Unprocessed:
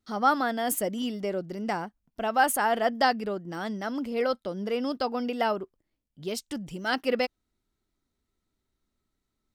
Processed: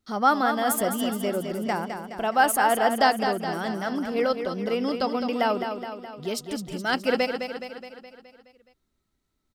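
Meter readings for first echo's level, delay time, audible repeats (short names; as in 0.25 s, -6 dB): -7.5 dB, 0.21 s, 6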